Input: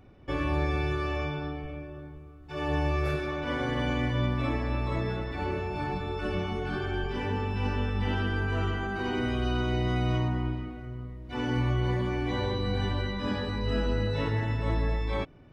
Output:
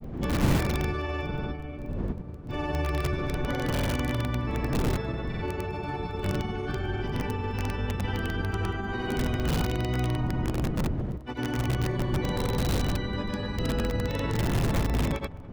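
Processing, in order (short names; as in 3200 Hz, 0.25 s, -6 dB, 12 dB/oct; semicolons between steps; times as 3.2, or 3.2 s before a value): wind noise 180 Hz -29 dBFS; grains 0.1 s, grains 20/s, pitch spread up and down by 0 st; in parallel at -3.5 dB: wrapped overs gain 19.5 dB; on the sum: crackle 12/s -37 dBFS; on a send: narrowing echo 0.206 s, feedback 61%, band-pass 830 Hz, level -18 dB; on the sum: gain -4 dB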